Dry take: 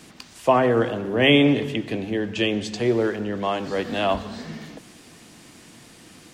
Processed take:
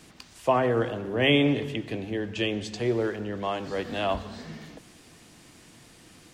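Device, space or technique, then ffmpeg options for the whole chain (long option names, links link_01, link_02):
low shelf boost with a cut just above: -af "lowshelf=frequency=98:gain=6.5,equalizer=frequency=220:width_type=o:width=0.73:gain=-3,volume=-5dB"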